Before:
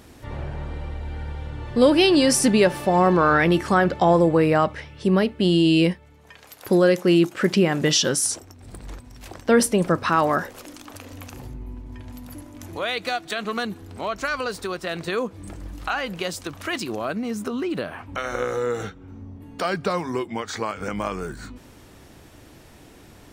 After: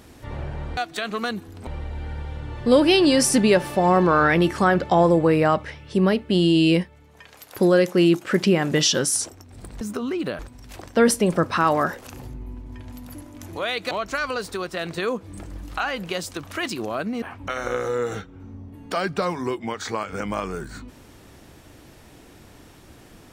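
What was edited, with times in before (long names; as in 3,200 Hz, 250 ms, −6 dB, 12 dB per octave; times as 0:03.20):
0:10.59–0:11.27: remove
0:13.11–0:14.01: move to 0:00.77
0:17.32–0:17.90: move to 0:08.91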